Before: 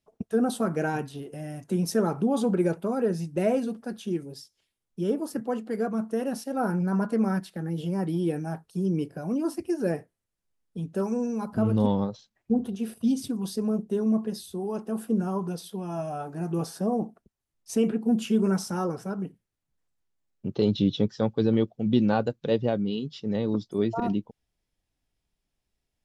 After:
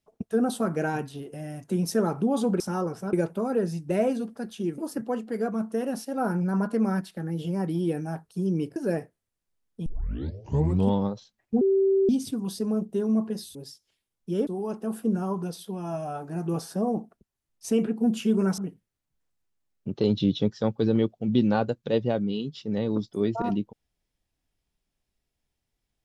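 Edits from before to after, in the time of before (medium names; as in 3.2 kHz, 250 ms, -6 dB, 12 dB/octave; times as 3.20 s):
4.25–5.17 s: move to 14.52 s
9.15–9.73 s: delete
10.83 s: tape start 1.07 s
12.58–13.06 s: bleep 388 Hz -18 dBFS
18.63–19.16 s: move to 2.60 s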